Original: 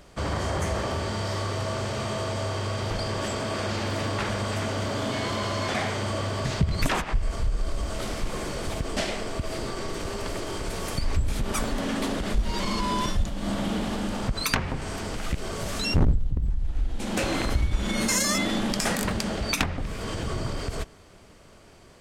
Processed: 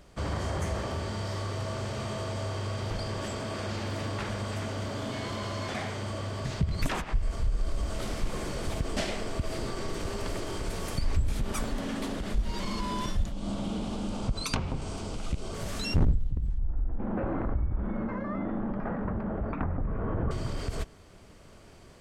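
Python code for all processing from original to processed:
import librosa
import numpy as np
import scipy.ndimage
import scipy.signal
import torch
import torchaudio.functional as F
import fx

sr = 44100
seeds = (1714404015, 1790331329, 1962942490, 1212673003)

y = fx.chain(x, sr, fx.lowpass(hz=10000.0, slope=24),
    fx.peak_eq(hz=1800.0, db=-12.0, octaves=0.45), at=(13.32, 15.54))
y = fx.chain(y, sr, fx.lowpass(hz=1400.0, slope=24),
    fx.env_flatten(amount_pct=50), at=(16.58, 20.31))
y = fx.rider(y, sr, range_db=10, speed_s=2.0)
y = fx.low_shelf(y, sr, hz=260.0, db=4.0)
y = y * librosa.db_to_amplitude(-7.5)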